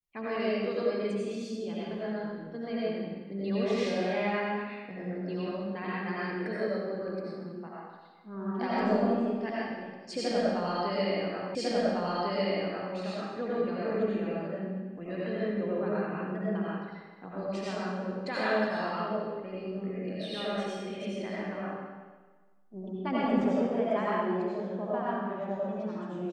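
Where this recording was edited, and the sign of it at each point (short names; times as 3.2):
11.55 repeat of the last 1.4 s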